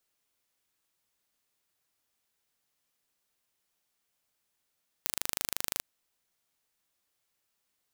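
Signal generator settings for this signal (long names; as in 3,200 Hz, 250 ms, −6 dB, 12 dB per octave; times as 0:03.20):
impulse train 25.7 per second, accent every 0, −3.5 dBFS 0.77 s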